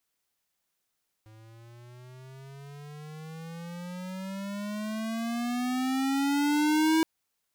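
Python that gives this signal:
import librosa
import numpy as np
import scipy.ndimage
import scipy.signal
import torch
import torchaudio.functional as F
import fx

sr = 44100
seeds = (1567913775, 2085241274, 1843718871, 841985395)

y = fx.riser_tone(sr, length_s=5.77, level_db=-22.5, wave='square', hz=108.0, rise_st=19.0, swell_db=29.5)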